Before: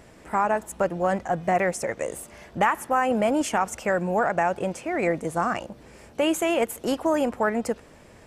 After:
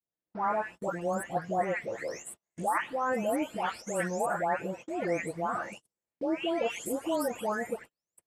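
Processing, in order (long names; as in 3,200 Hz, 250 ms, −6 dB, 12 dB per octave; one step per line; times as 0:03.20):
every frequency bin delayed by itself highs late, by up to 518 ms
noise gate −37 dBFS, range −41 dB
low-shelf EQ 89 Hz −9 dB
level −5.5 dB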